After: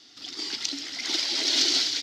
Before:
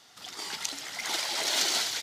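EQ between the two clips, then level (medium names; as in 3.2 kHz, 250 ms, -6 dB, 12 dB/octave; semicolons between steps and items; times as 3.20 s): FFT filter 120 Hz 0 dB, 170 Hz -6 dB, 290 Hz +13 dB, 470 Hz -2 dB, 890 Hz -8 dB, 5.1 kHz +8 dB, 9.5 kHz -13 dB; 0.0 dB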